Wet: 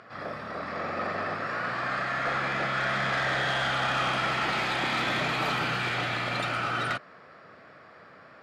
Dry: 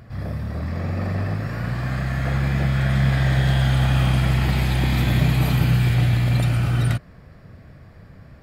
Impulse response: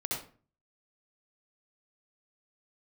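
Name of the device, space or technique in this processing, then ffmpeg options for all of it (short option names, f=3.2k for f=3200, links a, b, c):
intercom: -af "highpass=450,lowpass=4.8k,equalizer=f=1.3k:t=o:w=0.37:g=8,asoftclip=type=tanh:threshold=-23.5dB,volume=2.5dB"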